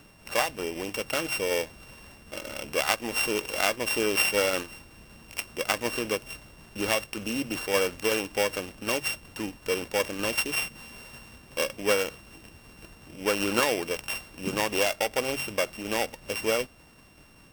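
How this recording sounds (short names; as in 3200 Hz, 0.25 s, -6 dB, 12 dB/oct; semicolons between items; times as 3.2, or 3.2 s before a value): a buzz of ramps at a fixed pitch in blocks of 16 samples; tremolo saw down 5.3 Hz, depth 30%; AAC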